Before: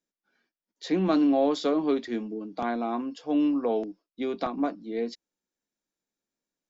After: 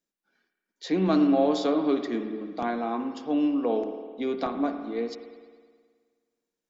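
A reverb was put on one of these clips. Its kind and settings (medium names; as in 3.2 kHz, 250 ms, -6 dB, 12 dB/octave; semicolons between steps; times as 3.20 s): spring tank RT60 1.7 s, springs 53 ms, chirp 60 ms, DRR 7 dB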